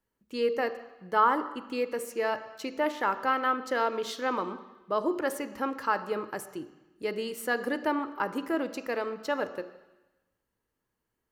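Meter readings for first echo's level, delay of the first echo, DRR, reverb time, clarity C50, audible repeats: no echo, no echo, 11.0 dB, 1.0 s, 12.5 dB, no echo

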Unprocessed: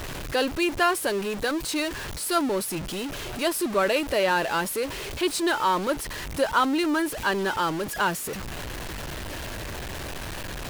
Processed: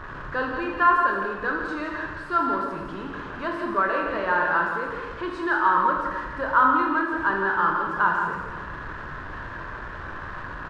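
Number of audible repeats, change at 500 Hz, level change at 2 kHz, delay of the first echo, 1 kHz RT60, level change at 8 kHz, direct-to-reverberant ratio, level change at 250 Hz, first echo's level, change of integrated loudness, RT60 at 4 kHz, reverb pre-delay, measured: 1, -3.5 dB, +4.0 dB, 166 ms, 1.3 s, under -25 dB, -0.5 dB, -3.0 dB, -7.0 dB, +2.5 dB, 1.1 s, 20 ms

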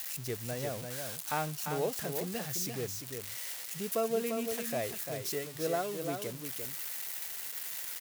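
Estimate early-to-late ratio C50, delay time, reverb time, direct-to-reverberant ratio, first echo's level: no reverb, 346 ms, no reverb, no reverb, -6.0 dB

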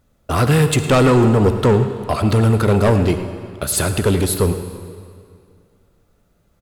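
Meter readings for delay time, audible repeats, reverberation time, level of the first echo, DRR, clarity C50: 108 ms, 1, 2.2 s, -15.0 dB, 8.5 dB, 8.5 dB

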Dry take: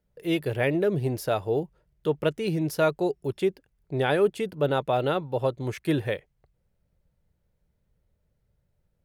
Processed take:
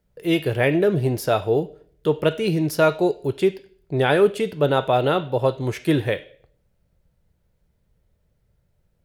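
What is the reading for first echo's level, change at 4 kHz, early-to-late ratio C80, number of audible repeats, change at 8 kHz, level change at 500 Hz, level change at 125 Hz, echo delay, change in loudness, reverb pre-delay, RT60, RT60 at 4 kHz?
no echo, +6.5 dB, 19.5 dB, no echo, +5.5 dB, +5.5 dB, +5.5 dB, no echo, +5.5 dB, 3 ms, 0.55 s, 0.45 s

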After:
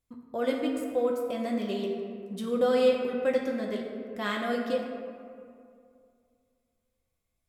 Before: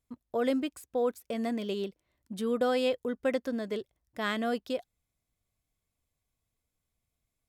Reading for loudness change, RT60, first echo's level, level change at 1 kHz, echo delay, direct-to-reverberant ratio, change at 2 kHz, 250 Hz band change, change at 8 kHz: +2.5 dB, 2.3 s, no echo, +1.5 dB, no echo, -1.5 dB, +1.5 dB, +2.0 dB, no reading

